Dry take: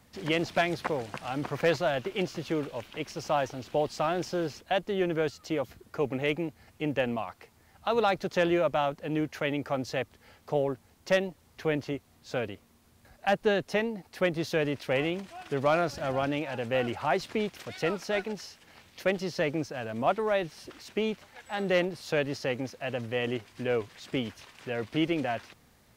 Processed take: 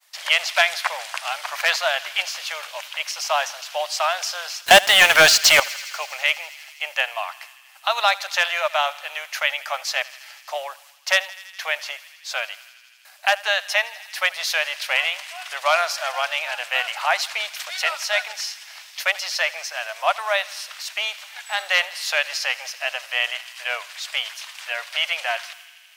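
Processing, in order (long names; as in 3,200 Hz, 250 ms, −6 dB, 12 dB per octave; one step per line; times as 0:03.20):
Chebyshev high-pass filter 610 Hz, order 5
downward expander −59 dBFS
tilt shelving filter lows −10 dB, about 830 Hz
0:04.66–0:05.60: leveller curve on the samples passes 5
feedback echo with a high-pass in the loop 82 ms, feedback 85%, high-pass 860 Hz, level −19 dB
level +7 dB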